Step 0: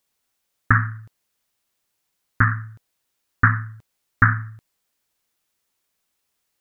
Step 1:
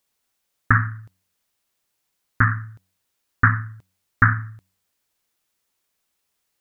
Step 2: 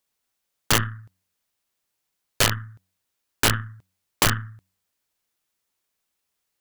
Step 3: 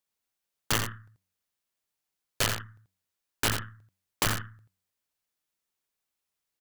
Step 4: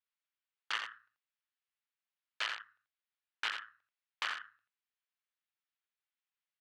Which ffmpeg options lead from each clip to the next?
ffmpeg -i in.wav -af "bandreject=frequency=93.56:width_type=h:width=4,bandreject=frequency=187.12:width_type=h:width=4,bandreject=frequency=280.68:width_type=h:width=4" out.wav
ffmpeg -i in.wav -af "aeval=exprs='0.841*(cos(1*acos(clip(val(0)/0.841,-1,1)))-cos(1*PI/2))+0.0944*(cos(3*acos(clip(val(0)/0.841,-1,1)))-cos(3*PI/2))+0.15*(cos(6*acos(clip(val(0)/0.841,-1,1)))-cos(6*PI/2))':channel_layout=same,aeval=exprs='(mod(2.66*val(0)+1,2)-1)/2.66':channel_layout=same" out.wav
ffmpeg -i in.wav -af "aecho=1:1:85:0.422,volume=-7.5dB" out.wav
ffmpeg -i in.wav -filter_complex "[0:a]asplit=2[link_01][link_02];[link_02]acrusher=samples=33:mix=1:aa=0.000001,volume=-12dB[link_03];[link_01][link_03]amix=inputs=2:normalize=0,asuperpass=centerf=2000:order=4:qfactor=0.78,volume=-5dB" out.wav

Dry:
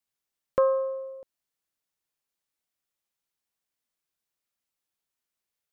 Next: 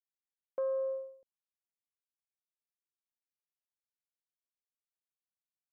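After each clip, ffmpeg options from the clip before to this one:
ffmpeg -i in.wav -af "agate=range=-33dB:threshold=-32dB:ratio=3:detection=peak,equalizer=frequency=1200:width_type=o:width=0.61:gain=-12.5,areverse,acompressor=threshold=-30dB:ratio=6,areverse,volume=-1.5dB" out.wav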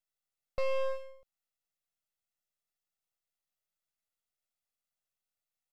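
ffmpeg -i in.wav -af "aeval=exprs='max(val(0),0)':channel_layout=same,aeval=exprs='0.0398*(cos(1*acos(clip(val(0)/0.0398,-1,1)))-cos(1*PI/2))+0.00398*(cos(8*acos(clip(val(0)/0.0398,-1,1)))-cos(8*PI/2))':channel_layout=same,aecho=1:1:1.5:0.51,volume=5.5dB" out.wav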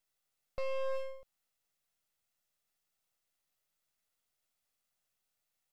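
ffmpeg -i in.wav -af "alimiter=level_in=9dB:limit=-24dB:level=0:latency=1,volume=-9dB,volume=6.5dB" out.wav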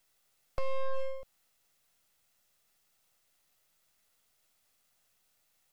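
ffmpeg -i in.wav -filter_complex "[0:a]acrossover=split=350[link_01][link_02];[link_02]acompressor=threshold=-49dB:ratio=4[link_03];[link_01][link_03]amix=inputs=2:normalize=0,volume=35.5dB,asoftclip=hard,volume=-35.5dB,volume=11dB" out.wav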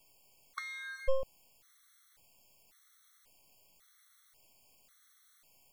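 ffmpeg -i in.wav -af "afftfilt=real='re*gt(sin(2*PI*0.92*pts/sr)*(1-2*mod(floor(b*sr/1024/1100),2)),0)':imag='im*gt(sin(2*PI*0.92*pts/sr)*(1-2*mod(floor(b*sr/1024/1100),2)),0)':win_size=1024:overlap=0.75,volume=10dB" out.wav

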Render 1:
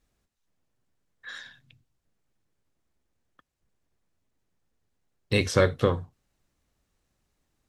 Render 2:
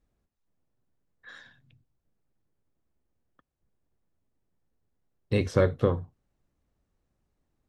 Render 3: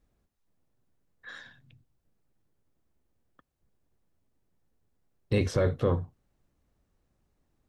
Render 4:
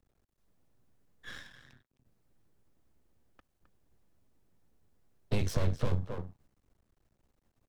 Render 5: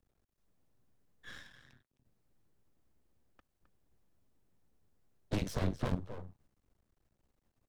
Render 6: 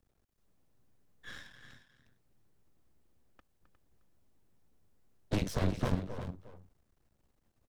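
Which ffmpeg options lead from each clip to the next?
ffmpeg -i in.wav -af "tiltshelf=frequency=1500:gain=6,volume=-6dB" out.wav
ffmpeg -i in.wav -af "alimiter=limit=-19dB:level=0:latency=1:release=13,volume=3dB" out.wav
ffmpeg -i in.wav -filter_complex "[0:a]asplit=2[link_01][link_02];[link_02]adelay=262.4,volume=-11dB,highshelf=frequency=4000:gain=-5.9[link_03];[link_01][link_03]amix=inputs=2:normalize=0,aeval=exprs='max(val(0),0)':channel_layout=same,acrossover=split=160|3000[link_04][link_05][link_06];[link_05]acompressor=threshold=-38dB:ratio=6[link_07];[link_04][link_07][link_06]amix=inputs=3:normalize=0,volume=3.5dB" out.wav
ffmpeg -i in.wav -af "aeval=exprs='0.178*(cos(1*acos(clip(val(0)/0.178,-1,1)))-cos(1*PI/2))+0.0631*(cos(7*acos(clip(val(0)/0.178,-1,1)))-cos(7*PI/2))':channel_layout=same,volume=-7dB" out.wav
ffmpeg -i in.wav -af "aecho=1:1:357:0.282,volume=2.5dB" out.wav

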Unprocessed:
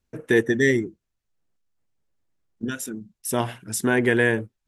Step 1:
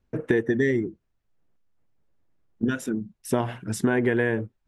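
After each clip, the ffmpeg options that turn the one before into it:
ffmpeg -i in.wav -af "lowpass=frequency=1500:poles=1,acompressor=threshold=-25dB:ratio=10,volume=6.5dB" out.wav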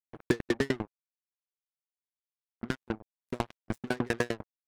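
ffmpeg -i in.wav -af "acrusher=bits=3:mix=0:aa=0.5,aeval=exprs='val(0)*pow(10,-37*if(lt(mod(10*n/s,1),2*abs(10)/1000),1-mod(10*n/s,1)/(2*abs(10)/1000),(mod(10*n/s,1)-2*abs(10)/1000)/(1-2*abs(10)/1000))/20)':channel_layout=same" out.wav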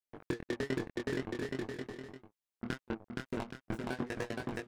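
ffmpeg -i in.wav -af "flanger=delay=18.5:depth=6.1:speed=0.93,aecho=1:1:470|822.5|1087|1285|1434:0.631|0.398|0.251|0.158|0.1,alimiter=limit=-24dB:level=0:latency=1:release=407,volume=1dB" out.wav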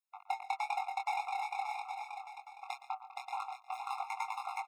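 ffmpeg -i in.wav -af "aecho=1:1:117|139|581:0.168|0.106|0.473,afreqshift=430,afftfilt=real='re*eq(mod(floor(b*sr/1024/700),2),1)':imag='im*eq(mod(floor(b*sr/1024/700),2),1)':win_size=1024:overlap=0.75,volume=1.5dB" out.wav

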